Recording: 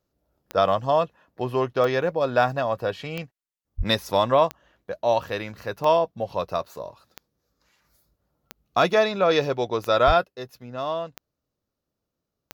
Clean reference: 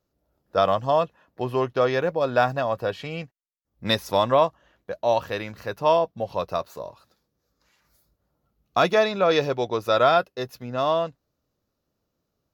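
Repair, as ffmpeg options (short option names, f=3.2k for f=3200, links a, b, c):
-filter_complex "[0:a]adeclick=t=4,asplit=3[a][b][c];[a]afade=t=out:st=3.77:d=0.02[d];[b]highpass=f=140:w=0.5412,highpass=f=140:w=1.3066,afade=t=in:st=3.77:d=0.02,afade=t=out:st=3.89:d=0.02[e];[c]afade=t=in:st=3.89:d=0.02[f];[d][e][f]amix=inputs=3:normalize=0,asplit=3[g][h][i];[g]afade=t=out:st=10.06:d=0.02[j];[h]highpass=f=140:w=0.5412,highpass=f=140:w=1.3066,afade=t=in:st=10.06:d=0.02,afade=t=out:st=10.18:d=0.02[k];[i]afade=t=in:st=10.18:d=0.02[l];[j][k][l]amix=inputs=3:normalize=0,asetnsamples=n=441:p=0,asendcmd='10.24 volume volume 5.5dB',volume=0dB"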